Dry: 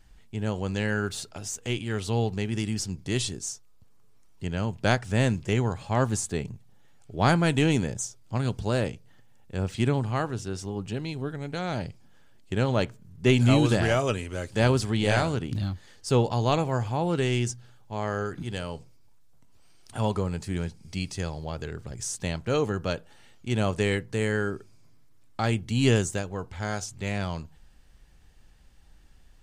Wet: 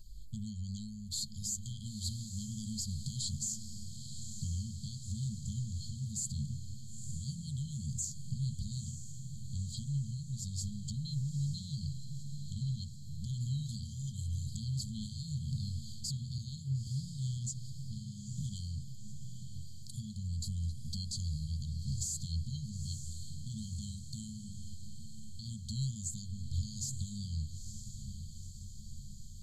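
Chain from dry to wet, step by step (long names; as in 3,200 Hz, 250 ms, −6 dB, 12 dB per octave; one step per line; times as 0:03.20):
downward compressor 6 to 1, threshold −34 dBFS, peak gain reduction 17.5 dB
brickwall limiter −30 dBFS, peak gain reduction 8.5 dB
linear-phase brick-wall band-stop 210–3,100 Hz
de-essing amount 80%
EQ curve with evenly spaced ripples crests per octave 1.4, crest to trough 15 dB
feedback delay with all-pass diffusion 924 ms, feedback 61%, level −9 dB
0:16.38–0:16.87: multiband upward and downward expander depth 100%
level +2 dB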